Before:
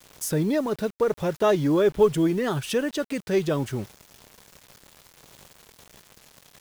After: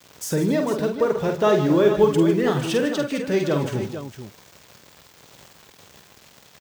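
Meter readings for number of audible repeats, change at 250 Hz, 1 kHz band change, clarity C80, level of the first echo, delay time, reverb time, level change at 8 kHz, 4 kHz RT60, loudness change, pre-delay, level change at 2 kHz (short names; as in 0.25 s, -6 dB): 4, +3.5 dB, +3.5 dB, none, -5.5 dB, 48 ms, none, +1.0 dB, none, +3.0 dB, none, +3.5 dB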